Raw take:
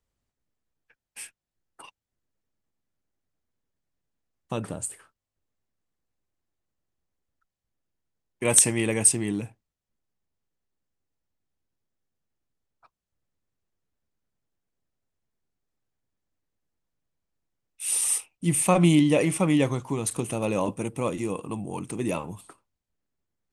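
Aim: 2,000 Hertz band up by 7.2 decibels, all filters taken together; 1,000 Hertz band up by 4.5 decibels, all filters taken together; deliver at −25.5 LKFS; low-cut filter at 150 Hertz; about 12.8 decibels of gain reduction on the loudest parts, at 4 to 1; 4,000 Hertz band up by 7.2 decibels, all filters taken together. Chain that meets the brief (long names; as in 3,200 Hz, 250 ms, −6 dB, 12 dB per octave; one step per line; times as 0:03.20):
high-pass filter 150 Hz
parametric band 1,000 Hz +4 dB
parametric band 2,000 Hz +5.5 dB
parametric band 4,000 Hz +7.5 dB
downward compressor 4 to 1, threshold −26 dBFS
level +5 dB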